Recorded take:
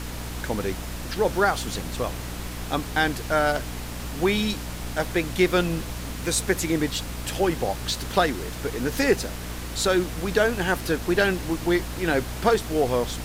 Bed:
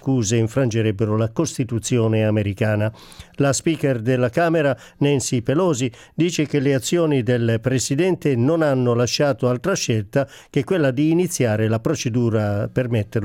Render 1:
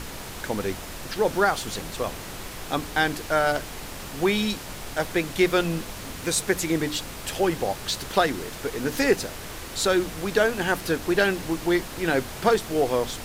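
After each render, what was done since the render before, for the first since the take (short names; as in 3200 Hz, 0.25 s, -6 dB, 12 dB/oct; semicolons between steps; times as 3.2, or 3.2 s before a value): notches 60/120/180/240/300 Hz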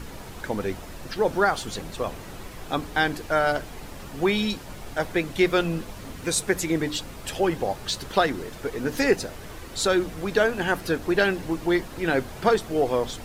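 denoiser 8 dB, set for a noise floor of -38 dBFS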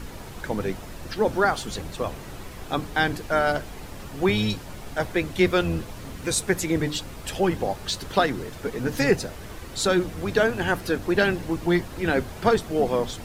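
octaver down 1 oct, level -3 dB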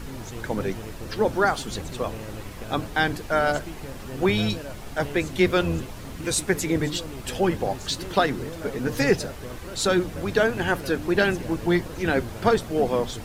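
add bed -20.5 dB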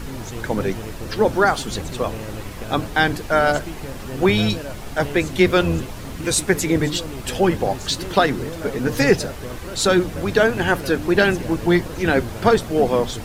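gain +5 dB; limiter -3 dBFS, peak gain reduction 1 dB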